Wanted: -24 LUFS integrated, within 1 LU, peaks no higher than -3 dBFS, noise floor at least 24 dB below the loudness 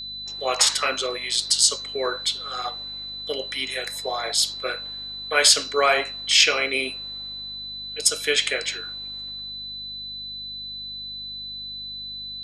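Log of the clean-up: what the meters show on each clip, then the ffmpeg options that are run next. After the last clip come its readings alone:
hum 50 Hz; highest harmonic 250 Hz; hum level -48 dBFS; steady tone 4 kHz; tone level -32 dBFS; loudness -23.0 LUFS; peak level -1.5 dBFS; loudness target -24.0 LUFS
-> -af "bandreject=f=50:t=h:w=4,bandreject=f=100:t=h:w=4,bandreject=f=150:t=h:w=4,bandreject=f=200:t=h:w=4,bandreject=f=250:t=h:w=4"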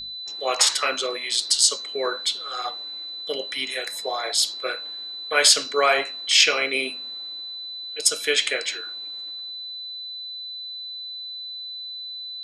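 hum not found; steady tone 4 kHz; tone level -32 dBFS
-> -af "bandreject=f=4000:w=30"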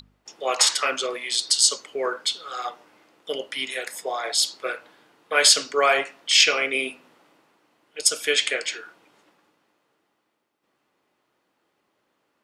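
steady tone not found; loudness -21.5 LUFS; peak level -1.0 dBFS; loudness target -24.0 LUFS
-> -af "volume=0.75"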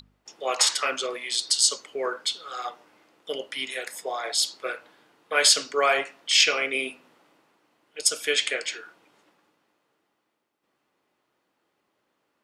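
loudness -24.0 LUFS; peak level -3.5 dBFS; noise floor -76 dBFS

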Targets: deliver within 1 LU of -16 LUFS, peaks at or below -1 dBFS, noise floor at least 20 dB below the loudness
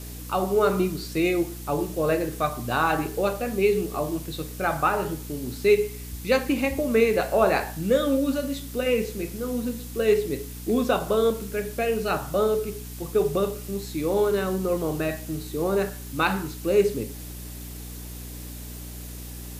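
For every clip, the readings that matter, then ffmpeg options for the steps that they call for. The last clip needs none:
hum 60 Hz; highest harmonic 300 Hz; hum level -36 dBFS; noise floor -38 dBFS; noise floor target -45 dBFS; loudness -25.0 LUFS; peak level -7.5 dBFS; loudness target -16.0 LUFS
-> -af "bandreject=f=60:t=h:w=4,bandreject=f=120:t=h:w=4,bandreject=f=180:t=h:w=4,bandreject=f=240:t=h:w=4,bandreject=f=300:t=h:w=4"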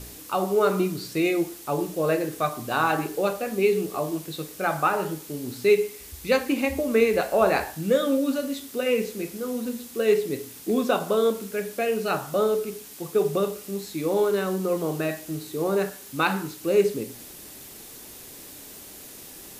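hum not found; noise floor -44 dBFS; noise floor target -46 dBFS
-> -af "afftdn=nr=6:nf=-44"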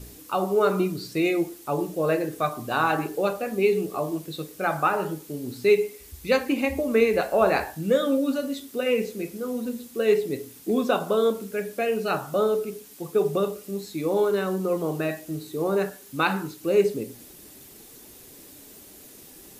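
noise floor -48 dBFS; loudness -25.5 LUFS; peak level -8.0 dBFS; loudness target -16.0 LUFS
-> -af "volume=2.99,alimiter=limit=0.891:level=0:latency=1"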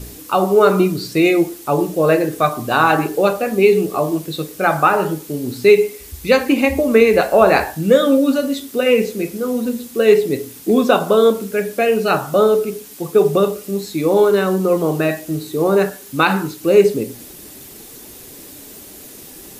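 loudness -16.0 LUFS; peak level -1.0 dBFS; noise floor -38 dBFS

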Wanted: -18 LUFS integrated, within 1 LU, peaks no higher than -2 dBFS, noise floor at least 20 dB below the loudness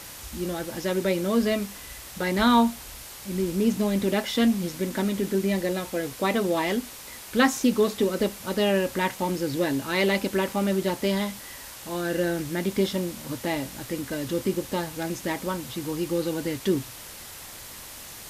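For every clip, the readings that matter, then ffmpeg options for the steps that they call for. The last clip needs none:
noise floor -42 dBFS; noise floor target -46 dBFS; loudness -26.0 LUFS; peak level -7.5 dBFS; loudness target -18.0 LUFS
-> -af "afftdn=nr=6:nf=-42"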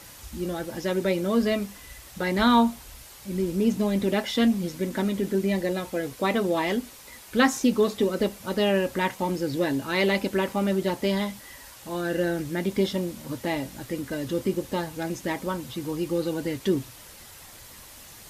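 noise floor -47 dBFS; loudness -26.5 LUFS; peak level -7.5 dBFS; loudness target -18.0 LUFS
-> -af "volume=2.66,alimiter=limit=0.794:level=0:latency=1"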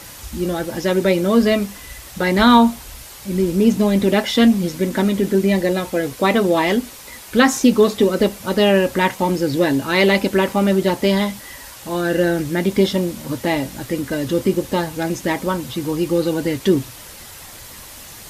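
loudness -18.0 LUFS; peak level -2.0 dBFS; noise floor -38 dBFS

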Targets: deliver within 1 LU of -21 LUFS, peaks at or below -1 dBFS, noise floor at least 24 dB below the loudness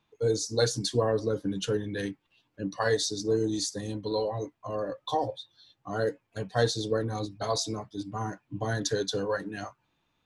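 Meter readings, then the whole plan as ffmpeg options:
loudness -30.5 LUFS; peak level -12.5 dBFS; loudness target -21.0 LUFS
-> -af "volume=2.99"

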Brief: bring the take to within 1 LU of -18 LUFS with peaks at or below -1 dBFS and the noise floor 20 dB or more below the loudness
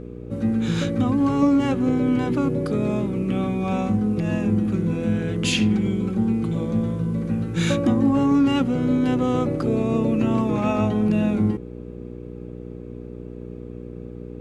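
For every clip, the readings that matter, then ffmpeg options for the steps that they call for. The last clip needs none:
hum 60 Hz; highest harmonic 480 Hz; hum level -33 dBFS; loudness -22.0 LUFS; peak level -8.5 dBFS; loudness target -18.0 LUFS
-> -af "bandreject=f=60:t=h:w=4,bandreject=f=120:t=h:w=4,bandreject=f=180:t=h:w=4,bandreject=f=240:t=h:w=4,bandreject=f=300:t=h:w=4,bandreject=f=360:t=h:w=4,bandreject=f=420:t=h:w=4,bandreject=f=480:t=h:w=4"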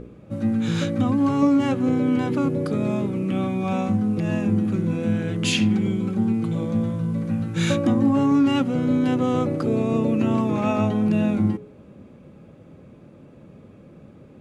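hum not found; loudness -22.0 LUFS; peak level -9.0 dBFS; loudness target -18.0 LUFS
-> -af "volume=1.58"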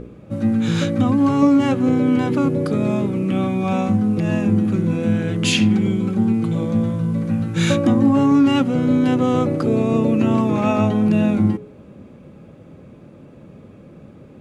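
loudness -18.0 LUFS; peak level -5.0 dBFS; noise floor -44 dBFS

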